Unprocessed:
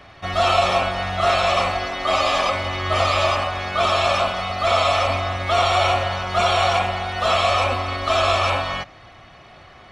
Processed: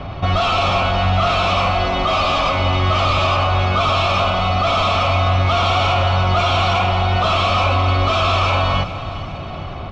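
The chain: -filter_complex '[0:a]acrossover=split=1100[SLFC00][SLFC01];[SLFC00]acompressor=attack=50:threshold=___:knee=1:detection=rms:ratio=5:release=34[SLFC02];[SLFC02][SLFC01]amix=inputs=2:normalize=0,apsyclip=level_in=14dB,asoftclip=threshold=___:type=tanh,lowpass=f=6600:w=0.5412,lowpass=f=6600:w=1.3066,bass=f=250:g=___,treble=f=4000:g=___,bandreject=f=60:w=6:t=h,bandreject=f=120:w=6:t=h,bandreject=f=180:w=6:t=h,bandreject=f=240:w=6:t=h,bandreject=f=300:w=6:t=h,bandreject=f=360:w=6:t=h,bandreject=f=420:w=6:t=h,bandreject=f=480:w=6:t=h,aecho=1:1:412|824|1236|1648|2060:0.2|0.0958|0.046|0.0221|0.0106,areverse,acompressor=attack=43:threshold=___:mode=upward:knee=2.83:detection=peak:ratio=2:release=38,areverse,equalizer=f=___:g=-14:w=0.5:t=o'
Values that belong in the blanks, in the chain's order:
-37dB, -10.5dB, 8, -15, -29dB, 1800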